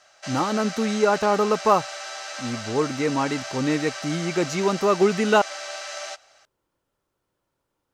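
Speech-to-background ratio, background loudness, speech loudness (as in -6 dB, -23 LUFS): 10.5 dB, -33.5 LUFS, -23.0 LUFS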